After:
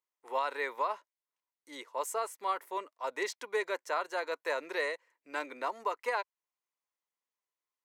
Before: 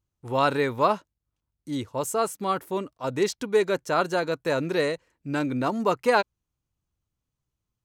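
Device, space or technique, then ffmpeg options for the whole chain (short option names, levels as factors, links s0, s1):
laptop speaker: -af "highpass=f=430:w=0.5412,highpass=f=430:w=1.3066,equalizer=f=1000:t=o:w=0.28:g=8,equalizer=f=2000:t=o:w=0.41:g=9,alimiter=limit=0.2:level=0:latency=1:release=339,volume=0.422"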